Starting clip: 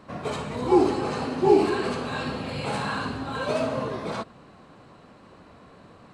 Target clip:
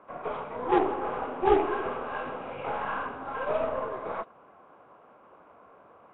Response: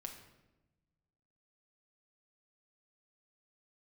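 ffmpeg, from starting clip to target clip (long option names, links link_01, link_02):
-filter_complex "[0:a]acrossover=split=410 2200:gain=0.126 1 0.1[link_01][link_02][link_03];[link_01][link_02][link_03]amix=inputs=3:normalize=0,bandreject=frequency=1800:width=6.2,aeval=exprs='0.282*(cos(1*acos(clip(val(0)/0.282,-1,1)))-cos(1*PI/2))+0.112*(cos(2*acos(clip(val(0)/0.282,-1,1)))-cos(2*PI/2))+0.0251*(cos(8*acos(clip(val(0)/0.282,-1,1)))-cos(8*PI/2))':channel_layout=same" -ar 8000 -c:a nellymoser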